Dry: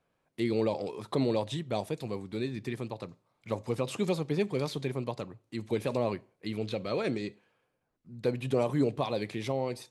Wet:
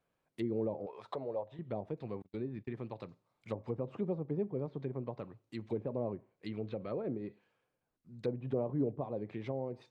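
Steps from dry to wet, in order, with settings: low-pass that closes with the level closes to 700 Hz, closed at -28 dBFS; 0.86–1.59 s: resonant low shelf 410 Hz -11.5 dB, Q 1.5; 2.22–2.73 s: gate -38 dBFS, range -40 dB; trim -5.5 dB

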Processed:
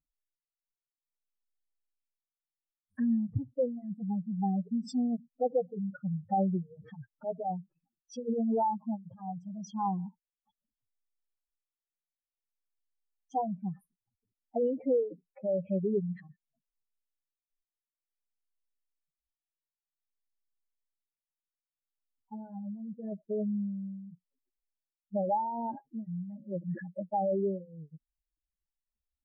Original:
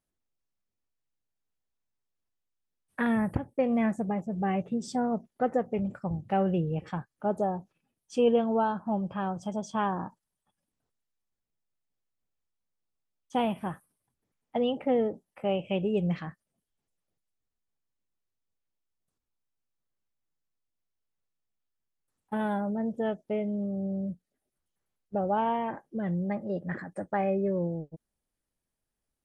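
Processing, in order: spectral contrast enhancement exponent 3.6; endless flanger 3.7 ms +0.53 Hz

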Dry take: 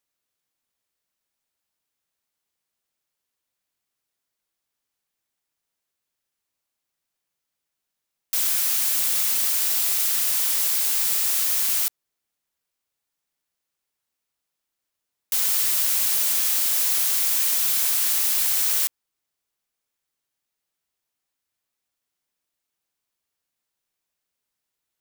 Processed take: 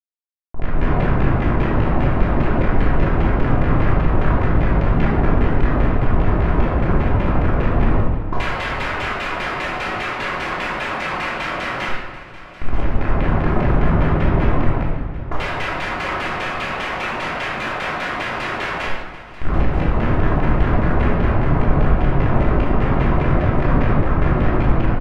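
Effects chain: spectral levelling over time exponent 0.6; tilt shelf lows +4.5 dB, about 1.3 kHz; hum notches 50/100/150/200/250/300/350 Hz; comb 5.4 ms, depth 91%; level rider gain up to 15.5 dB; waveshaping leveller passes 3; compression 2:1, threshold -21 dBFS, peak gain reduction 9 dB; Schmitt trigger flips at -24 dBFS; LFO low-pass saw down 5 Hz 670–2500 Hz; feedback delay 938 ms, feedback 46%, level -16.5 dB; simulated room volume 820 m³, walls mixed, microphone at 3.1 m; trim -4 dB

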